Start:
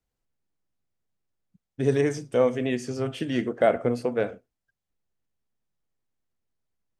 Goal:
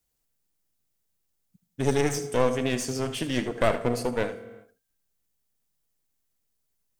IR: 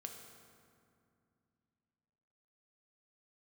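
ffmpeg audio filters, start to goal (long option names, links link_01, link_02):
-filter_complex "[0:a]crystalizer=i=3:c=0,aeval=exprs='clip(val(0),-1,0.0316)':channel_layout=same,asplit=2[link_01][link_02];[1:a]atrim=start_sample=2205,afade=type=out:start_time=0.38:duration=0.01,atrim=end_sample=17199,adelay=77[link_03];[link_02][link_03]afir=irnorm=-1:irlink=0,volume=-8dB[link_04];[link_01][link_04]amix=inputs=2:normalize=0"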